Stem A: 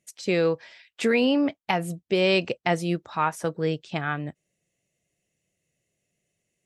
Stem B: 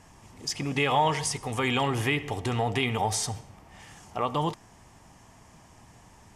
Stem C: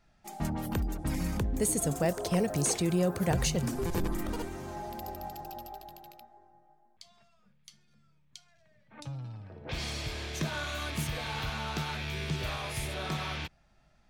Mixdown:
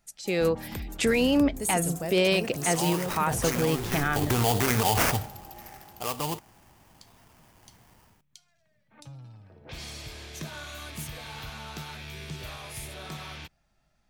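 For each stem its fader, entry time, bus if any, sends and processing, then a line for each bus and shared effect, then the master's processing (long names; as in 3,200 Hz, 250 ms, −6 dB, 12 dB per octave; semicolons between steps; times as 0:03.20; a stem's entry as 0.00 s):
−6.0 dB, 0.00 s, bus A, no send, no processing
0:02.60 −23.5 dB → 0:02.94 −14 dB → 0:04.00 −14 dB → 0:04.28 −2 dB → 0:05.13 −2 dB → 0:05.83 −12.5 dB, 1.85 s, bus A, no send, sample-rate reduction 3,900 Hz, jitter 20%
−5.5 dB, 0.00 s, no bus, no send, no processing
bus A: 0.0 dB, automatic gain control gain up to 8 dB; brickwall limiter −15.5 dBFS, peak gain reduction 8.5 dB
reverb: not used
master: high-shelf EQ 7,300 Hz +10 dB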